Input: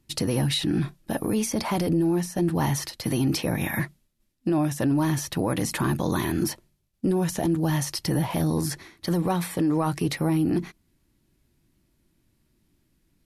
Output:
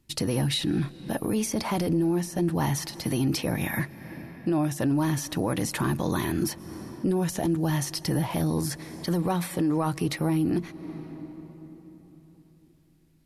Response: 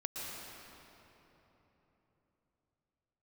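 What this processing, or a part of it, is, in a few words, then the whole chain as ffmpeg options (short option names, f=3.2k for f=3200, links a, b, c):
ducked reverb: -filter_complex "[0:a]asplit=3[a][b][c];[1:a]atrim=start_sample=2205[d];[b][d]afir=irnorm=-1:irlink=0[e];[c]apad=whole_len=584505[f];[e][f]sidechaincompress=threshold=-39dB:ratio=5:attack=16:release=254,volume=-9dB[g];[a][g]amix=inputs=2:normalize=0,volume=-2dB"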